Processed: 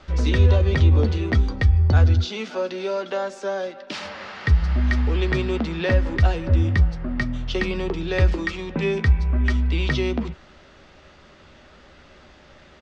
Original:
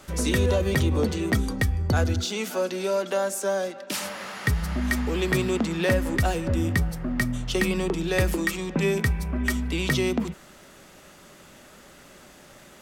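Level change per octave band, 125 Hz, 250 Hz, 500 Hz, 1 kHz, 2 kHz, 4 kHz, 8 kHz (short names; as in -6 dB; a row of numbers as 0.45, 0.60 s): +7.5, -0.5, 0.0, 0.0, 0.0, -0.5, -12.5 dB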